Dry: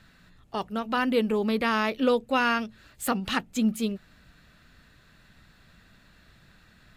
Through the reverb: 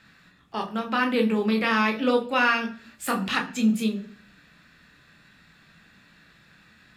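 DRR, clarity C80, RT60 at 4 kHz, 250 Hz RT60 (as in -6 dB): 3.0 dB, 17.5 dB, 0.55 s, 0.65 s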